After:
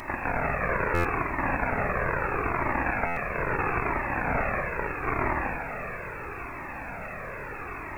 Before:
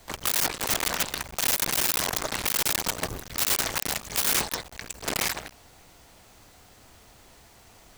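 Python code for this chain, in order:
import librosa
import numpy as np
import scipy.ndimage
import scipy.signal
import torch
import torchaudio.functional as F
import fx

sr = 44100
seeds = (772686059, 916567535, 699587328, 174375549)

y = fx.bin_compress(x, sr, power=0.4)
y = fx.tilt_shelf(y, sr, db=-7.5, hz=770.0)
y = fx.notch(y, sr, hz=620.0, q=12.0)
y = fx.peak_eq(y, sr, hz=fx.line((1.54, 100.0), (2.45, 940.0)), db=-7.5, octaves=0.84, at=(1.54, 2.45), fade=0.02)
y = fx.highpass(y, sr, hz=53.0, slope=6, at=(4.76, 5.23))
y = fx.room_shoebox(y, sr, seeds[0], volume_m3=160.0, walls='hard', distance_m=0.37)
y = fx.freq_invert(y, sr, carrier_hz=2600)
y = fx.quant_dither(y, sr, seeds[1], bits=10, dither='triangular')
y = fx.buffer_glitch(y, sr, at_s=(0.94, 3.06), block=512, repeats=8)
y = fx.comb_cascade(y, sr, direction='falling', hz=0.76)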